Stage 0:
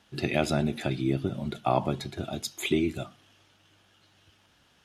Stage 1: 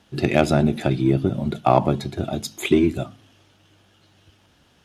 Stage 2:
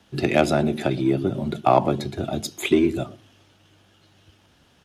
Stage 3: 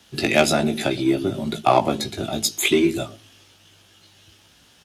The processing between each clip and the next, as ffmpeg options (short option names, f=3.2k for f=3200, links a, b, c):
-filter_complex "[0:a]bandreject=f=53.15:t=h:w=4,bandreject=f=106.3:t=h:w=4,bandreject=f=159.45:t=h:w=4,bandreject=f=212.6:t=h:w=4,bandreject=f=265.75:t=h:w=4,asplit=2[a][b];[b]adynamicsmooth=sensitivity=2:basefreq=930,volume=-1dB[c];[a][c]amix=inputs=2:normalize=0,volume=3.5dB"
-filter_complex "[0:a]acrossover=split=230|520|1700[a][b][c][d];[a]alimiter=level_in=0.5dB:limit=-24dB:level=0:latency=1,volume=-0.5dB[e];[b]aecho=1:1:115:0.335[f];[e][f][c][d]amix=inputs=4:normalize=0"
-filter_complex "[0:a]highshelf=f=2.3k:g=12,asplit=2[a][b];[b]adelay=18,volume=-5.5dB[c];[a][c]amix=inputs=2:normalize=0,volume=-1.5dB"